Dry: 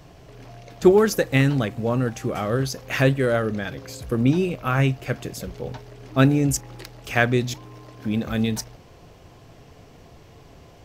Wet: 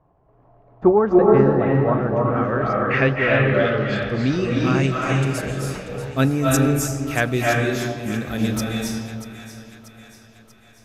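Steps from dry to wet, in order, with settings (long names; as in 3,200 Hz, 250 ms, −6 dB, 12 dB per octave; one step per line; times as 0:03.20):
noise gate −36 dBFS, range −13 dB
low-pass filter sweep 990 Hz → 12,000 Hz, 0:01.78–0:05.65
echo with a time of its own for lows and highs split 850 Hz, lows 413 ms, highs 637 ms, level −12.5 dB
convolution reverb RT60 1.3 s, pre-delay 229 ms, DRR −2.5 dB
level −2 dB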